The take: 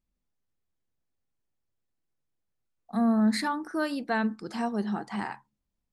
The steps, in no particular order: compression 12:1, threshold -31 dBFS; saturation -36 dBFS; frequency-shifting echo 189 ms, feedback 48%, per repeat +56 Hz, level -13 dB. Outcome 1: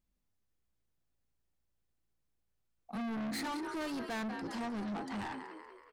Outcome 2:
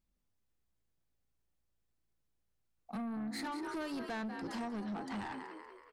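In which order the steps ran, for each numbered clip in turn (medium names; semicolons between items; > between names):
frequency-shifting echo > saturation > compression; frequency-shifting echo > compression > saturation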